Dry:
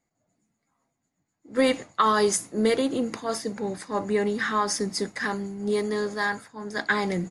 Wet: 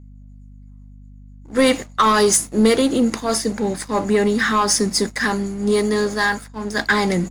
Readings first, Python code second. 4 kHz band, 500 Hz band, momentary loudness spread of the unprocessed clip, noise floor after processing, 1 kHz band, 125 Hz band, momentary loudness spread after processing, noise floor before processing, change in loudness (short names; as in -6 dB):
+9.5 dB, +6.5 dB, 8 LU, -42 dBFS, +6.5 dB, +9.0 dB, 8 LU, -80 dBFS, +7.5 dB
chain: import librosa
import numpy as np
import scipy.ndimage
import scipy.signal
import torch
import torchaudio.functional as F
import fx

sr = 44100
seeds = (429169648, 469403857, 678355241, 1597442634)

y = fx.high_shelf(x, sr, hz=4800.0, db=6.5)
y = fx.leveller(y, sr, passes=2)
y = fx.peak_eq(y, sr, hz=230.0, db=5.5, octaves=0.21)
y = fx.add_hum(y, sr, base_hz=50, snr_db=22)